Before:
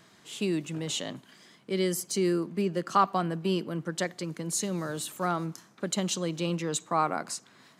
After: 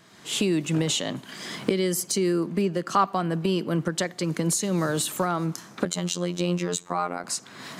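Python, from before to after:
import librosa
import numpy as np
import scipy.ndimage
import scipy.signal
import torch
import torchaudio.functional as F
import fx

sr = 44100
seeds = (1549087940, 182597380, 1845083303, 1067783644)

y = fx.recorder_agc(x, sr, target_db=-17.5, rise_db_per_s=33.0, max_gain_db=30)
y = fx.robotise(y, sr, hz=88.0, at=(5.85, 7.24))
y = y * librosa.db_to_amplitude(1.5)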